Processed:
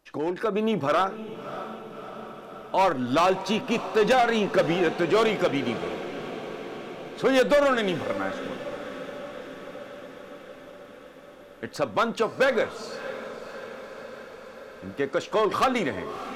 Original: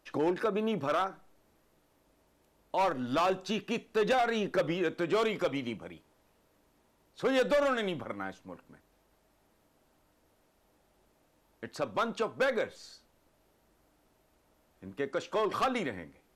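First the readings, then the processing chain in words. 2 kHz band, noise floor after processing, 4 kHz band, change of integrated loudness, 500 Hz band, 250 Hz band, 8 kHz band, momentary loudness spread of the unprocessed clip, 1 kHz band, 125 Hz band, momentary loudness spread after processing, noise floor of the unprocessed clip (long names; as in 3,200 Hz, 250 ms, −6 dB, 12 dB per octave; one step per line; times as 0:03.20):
+7.5 dB, −46 dBFS, +7.5 dB, +6.0 dB, +7.0 dB, +7.0 dB, +8.0 dB, 14 LU, +7.5 dB, +7.0 dB, 19 LU, −70 dBFS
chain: stylus tracing distortion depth 0.033 ms
automatic gain control gain up to 7 dB
feedback delay with all-pass diffusion 619 ms, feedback 70%, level −12.5 dB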